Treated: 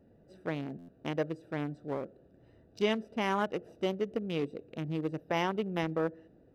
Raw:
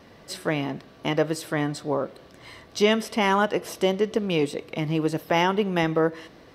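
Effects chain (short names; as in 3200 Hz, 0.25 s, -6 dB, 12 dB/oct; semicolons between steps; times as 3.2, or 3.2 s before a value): Wiener smoothing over 41 samples; stuck buffer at 0.78, samples 512, times 8; gain -8.5 dB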